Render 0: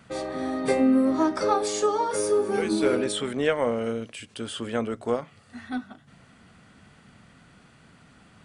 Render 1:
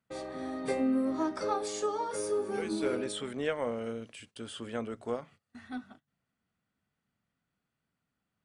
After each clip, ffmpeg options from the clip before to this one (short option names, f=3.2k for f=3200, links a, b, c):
-af "agate=range=-22dB:threshold=-45dB:ratio=16:detection=peak,volume=-8.5dB"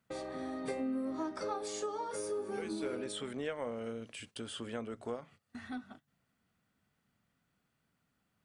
-af "acompressor=threshold=-49dB:ratio=2,volume=5dB"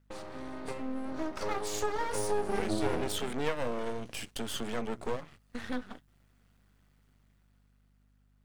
-af "dynaudnorm=f=270:g=11:m=8.5dB,aeval=exprs='max(val(0),0)':c=same,aeval=exprs='val(0)+0.000398*(sin(2*PI*50*n/s)+sin(2*PI*2*50*n/s)/2+sin(2*PI*3*50*n/s)/3+sin(2*PI*4*50*n/s)/4+sin(2*PI*5*50*n/s)/5)':c=same,volume=2.5dB"